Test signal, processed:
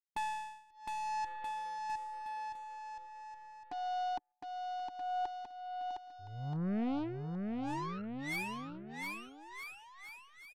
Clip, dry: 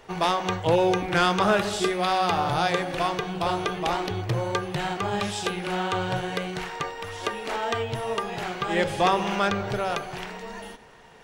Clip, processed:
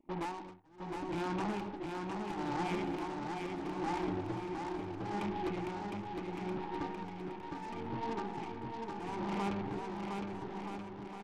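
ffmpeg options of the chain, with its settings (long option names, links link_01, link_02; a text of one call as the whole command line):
ffmpeg -i in.wav -filter_complex "[0:a]asplit=3[link_01][link_02][link_03];[link_01]bandpass=frequency=300:width_type=q:width=8,volume=0dB[link_04];[link_02]bandpass=frequency=870:width_type=q:width=8,volume=-6dB[link_05];[link_03]bandpass=frequency=2240:width_type=q:width=8,volume=-9dB[link_06];[link_04][link_05][link_06]amix=inputs=3:normalize=0,lowshelf=frequency=350:gain=11.5,acompressor=threshold=-32dB:ratio=8,afwtdn=0.00398,aresample=8000,asoftclip=type=tanh:threshold=-37dB,aresample=44100,aeval=exprs='0.0178*(cos(1*acos(clip(val(0)/0.0178,-1,1)))-cos(1*PI/2))+0.00355*(cos(4*acos(clip(val(0)/0.0178,-1,1)))-cos(4*PI/2))+0.000141*(cos(5*acos(clip(val(0)/0.0178,-1,1)))-cos(5*PI/2))+0.00355*(cos(6*acos(clip(val(0)/0.0178,-1,1)))-cos(6*PI/2))+0.00158*(cos(7*acos(clip(val(0)/0.0178,-1,1)))-cos(7*PI/2))':channel_layout=same,tremolo=f=0.74:d=0.97,aecho=1:1:710|1278|1732|2096|2387:0.631|0.398|0.251|0.158|0.1,volume=5dB" out.wav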